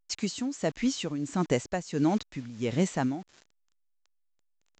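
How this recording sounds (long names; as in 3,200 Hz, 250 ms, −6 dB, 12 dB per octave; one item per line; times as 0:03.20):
a quantiser's noise floor 8 bits, dither none
tremolo triangle 1.5 Hz, depth 80%
A-law companding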